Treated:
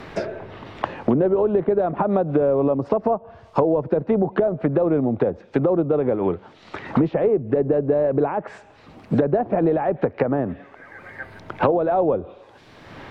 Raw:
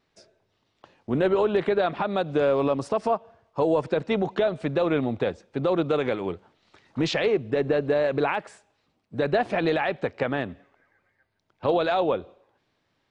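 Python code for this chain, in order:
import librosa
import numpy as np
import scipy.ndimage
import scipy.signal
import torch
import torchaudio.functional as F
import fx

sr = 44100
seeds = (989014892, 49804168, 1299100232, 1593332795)

y = fx.env_lowpass_down(x, sr, base_hz=730.0, full_db=-22.0)
y = fx.band_squash(y, sr, depth_pct=100)
y = F.gain(torch.from_numpy(y), 5.0).numpy()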